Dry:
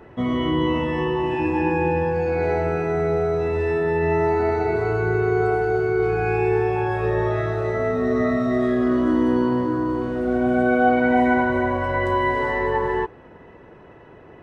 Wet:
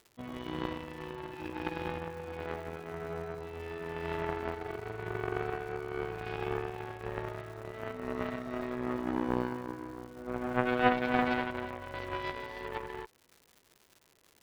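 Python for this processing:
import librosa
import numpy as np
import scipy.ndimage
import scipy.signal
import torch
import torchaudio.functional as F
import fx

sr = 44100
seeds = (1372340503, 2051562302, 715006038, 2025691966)

y = fx.cheby_harmonics(x, sr, harmonics=(3,), levels_db=(-10,), full_scale_db=-6.0)
y = fx.dmg_crackle(y, sr, seeds[0], per_s=220.0, level_db=-44.0)
y = F.gain(torch.from_numpy(y), -2.0).numpy()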